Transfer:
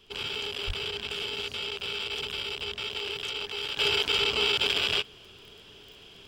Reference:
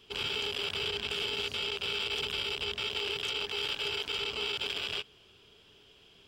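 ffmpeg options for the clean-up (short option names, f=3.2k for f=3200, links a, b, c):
-filter_complex "[0:a]adeclick=t=4,asplit=3[a][b][c];[a]afade=t=out:st=0.66:d=0.02[d];[b]highpass=f=140:w=0.5412,highpass=f=140:w=1.3066,afade=t=in:st=0.66:d=0.02,afade=t=out:st=0.78:d=0.02[e];[c]afade=t=in:st=0.78:d=0.02[f];[d][e][f]amix=inputs=3:normalize=0,agate=range=-21dB:threshold=-43dB,asetnsamples=n=441:p=0,asendcmd='3.77 volume volume -8.5dB',volume=0dB"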